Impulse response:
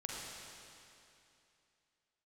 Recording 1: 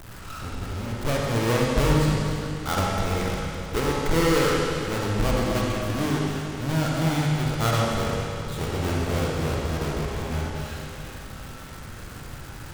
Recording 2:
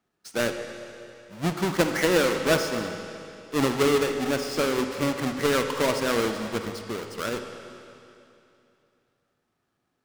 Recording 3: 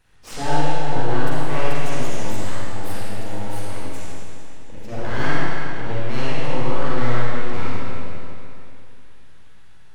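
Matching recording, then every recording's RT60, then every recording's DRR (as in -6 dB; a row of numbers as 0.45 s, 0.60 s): 1; 2.7 s, 2.8 s, 2.7 s; -3.5 dB, 5.5 dB, -9.0 dB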